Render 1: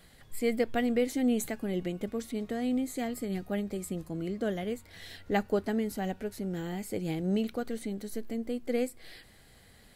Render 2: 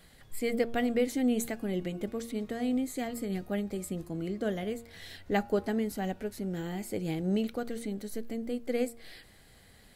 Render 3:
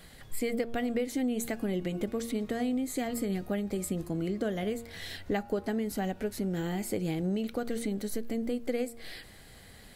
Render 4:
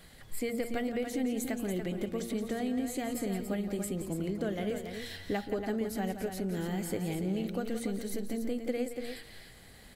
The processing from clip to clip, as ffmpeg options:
ffmpeg -i in.wav -af "bandreject=frequency=116.4:width_type=h:width=4,bandreject=frequency=232.8:width_type=h:width=4,bandreject=frequency=349.2:width_type=h:width=4,bandreject=frequency=465.6:width_type=h:width=4,bandreject=frequency=582:width_type=h:width=4,bandreject=frequency=698.4:width_type=h:width=4,bandreject=frequency=814.8:width_type=h:width=4,bandreject=frequency=931.2:width_type=h:width=4,bandreject=frequency=1047.6:width_type=h:width=4,bandreject=frequency=1164:width_type=h:width=4,bandreject=frequency=1280.4:width_type=h:width=4,bandreject=frequency=1396.8:width_type=h:width=4" out.wav
ffmpeg -i in.wav -af "acompressor=threshold=-33dB:ratio=6,volume=5.5dB" out.wav
ffmpeg -i in.wav -af "aecho=1:1:172|285.7:0.316|0.398,volume=-2.5dB" out.wav

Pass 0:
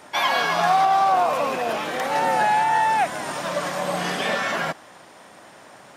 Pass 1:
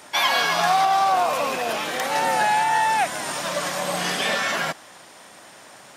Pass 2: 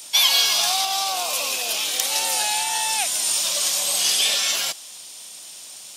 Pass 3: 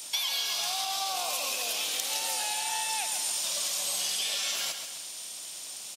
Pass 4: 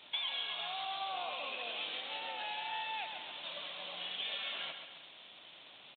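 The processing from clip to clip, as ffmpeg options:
ffmpeg -i in.wav -af "highshelf=frequency=2400:gain=9,volume=-2dB" out.wav
ffmpeg -i in.wav -filter_complex "[0:a]acrossover=split=290|4800[link_01][link_02][link_03];[link_01]acompressor=threshold=-47dB:ratio=6[link_04];[link_04][link_02][link_03]amix=inputs=3:normalize=0,aexciter=amount=8.6:drive=4.3:freq=2600,volume=-9dB" out.wav
ffmpeg -i in.wav -af "acompressor=threshold=-27dB:ratio=6,aecho=1:1:134|268|402|536|670|804:0.398|0.195|0.0956|0.0468|0.023|0.0112,volume=-2dB" out.wav
ffmpeg -i in.wav -af "aresample=8000,aresample=44100,volume=-5dB" out.wav

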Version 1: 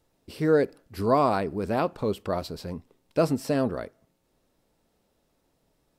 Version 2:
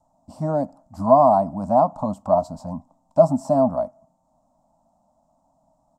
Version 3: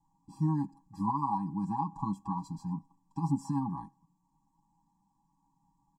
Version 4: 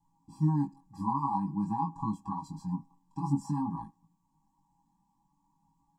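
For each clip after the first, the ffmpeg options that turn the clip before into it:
ffmpeg -i in.wav -filter_complex "[0:a]acrossover=split=420[link_01][link_02];[link_02]acompressor=threshold=-25dB:ratio=2[link_03];[link_01][link_03]amix=inputs=2:normalize=0,firequalizer=gain_entry='entry(110,0);entry(180,6);entry(270,6);entry(400,-29);entry(620,15);entry(970,12);entry(1600,-17);entry(2400,-23);entry(7200,3);entry(11000,-14)':delay=0.05:min_phase=1" out.wav
ffmpeg -i in.wav -af "alimiter=limit=-12dB:level=0:latency=1:release=95,aecho=1:1:6.2:0.83,afftfilt=real='re*eq(mod(floor(b*sr/1024/390),2),0)':imag='im*eq(mod(floor(b*sr/1024/390),2),0)':win_size=1024:overlap=0.75,volume=-7dB" out.wav
ffmpeg -i in.wav -af "flanger=delay=18:depth=4.3:speed=0.5,volume=3.5dB" out.wav

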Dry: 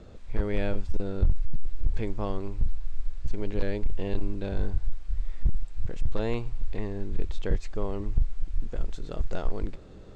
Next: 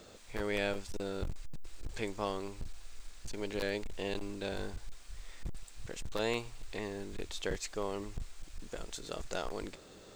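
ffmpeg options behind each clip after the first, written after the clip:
ffmpeg -i in.wav -af "aemphasis=mode=production:type=riaa" out.wav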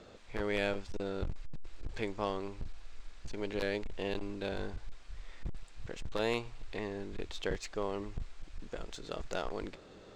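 ffmpeg -i in.wav -af "adynamicsmooth=sensitivity=5:basefreq=4400,volume=1dB" out.wav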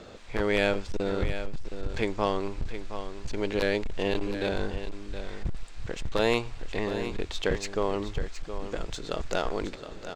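ffmpeg -i in.wav -af "aecho=1:1:718:0.299,volume=8dB" out.wav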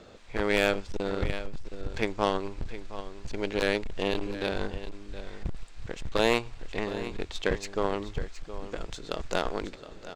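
ffmpeg -i in.wav -af "aeval=exprs='0.355*(cos(1*acos(clip(val(0)/0.355,-1,1)))-cos(1*PI/2))+0.0251*(cos(7*acos(clip(val(0)/0.355,-1,1)))-cos(7*PI/2))':channel_layout=same,volume=1.5dB" out.wav

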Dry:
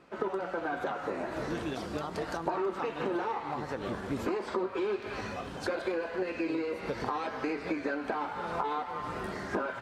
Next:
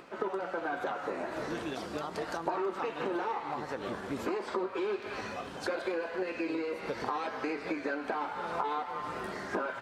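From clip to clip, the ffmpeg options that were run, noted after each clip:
ffmpeg -i in.wav -af "lowshelf=frequency=160:gain=-10,acompressor=mode=upward:threshold=-45dB:ratio=2.5" out.wav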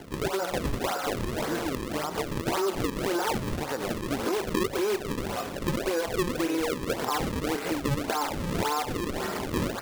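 ffmpeg -i in.wav -filter_complex "[0:a]asplit=2[link_01][link_02];[link_02]alimiter=level_in=5dB:limit=-24dB:level=0:latency=1:release=63,volume=-5dB,volume=1dB[link_03];[link_01][link_03]amix=inputs=2:normalize=0,acrusher=samples=35:mix=1:aa=0.000001:lfo=1:lforange=56:lforate=1.8,volume=1dB" out.wav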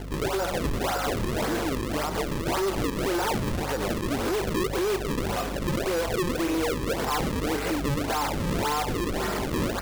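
ffmpeg -i in.wav -af "aeval=exprs='val(0)+0.0112*(sin(2*PI*50*n/s)+sin(2*PI*2*50*n/s)/2+sin(2*PI*3*50*n/s)/3+sin(2*PI*4*50*n/s)/4+sin(2*PI*5*50*n/s)/5)':channel_layout=same,volume=27dB,asoftclip=hard,volume=-27dB,volume=4dB" out.wav

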